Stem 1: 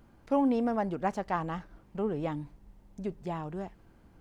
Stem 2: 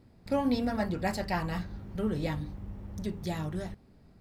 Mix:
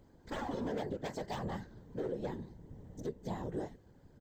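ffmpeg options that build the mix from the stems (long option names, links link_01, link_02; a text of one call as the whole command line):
ffmpeg -i stem1.wav -i stem2.wav -filter_complex "[0:a]aeval=exprs='0.0473*(abs(mod(val(0)/0.0473+3,4)-2)-1)':channel_layout=same,volume=1dB,asplit=2[link_01][link_02];[1:a]adelay=14,volume=-2dB[link_03];[link_02]apad=whole_len=185938[link_04];[link_03][link_04]sidechaincompress=threshold=-34dB:ratio=8:attack=16:release=1180[link_05];[link_01][link_05]amix=inputs=2:normalize=0,superequalizer=7b=2.24:10b=0.501:12b=0.447:15b=1.58:16b=0.282,afftfilt=real='hypot(re,im)*cos(2*PI*random(0))':imag='hypot(re,im)*sin(2*PI*random(1))':win_size=512:overlap=0.75,alimiter=level_in=4dB:limit=-24dB:level=0:latency=1:release=211,volume=-4dB" out.wav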